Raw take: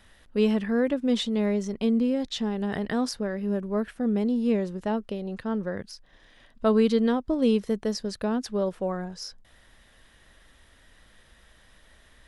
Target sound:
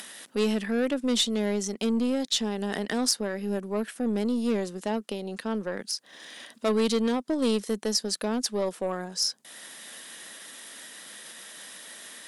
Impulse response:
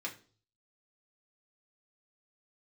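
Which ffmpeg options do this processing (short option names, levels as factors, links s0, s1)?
-filter_complex "[0:a]asplit=2[s0][s1];[s1]acompressor=mode=upward:threshold=0.0501:ratio=2.5,volume=0.708[s2];[s0][s2]amix=inputs=2:normalize=0,highpass=f=200:w=0.5412,highpass=f=200:w=1.3066,asoftclip=type=tanh:threshold=0.224,aeval=exprs='0.224*(cos(1*acos(clip(val(0)/0.224,-1,1)))-cos(1*PI/2))+0.0178*(cos(2*acos(clip(val(0)/0.224,-1,1)))-cos(2*PI/2))+0.00158*(cos(4*acos(clip(val(0)/0.224,-1,1)))-cos(4*PI/2))+0.01*(cos(6*acos(clip(val(0)/0.224,-1,1)))-cos(6*PI/2))+0.00355*(cos(8*acos(clip(val(0)/0.224,-1,1)))-cos(8*PI/2))':c=same,equalizer=f=9600:w=0.4:g=14.5,volume=0.562"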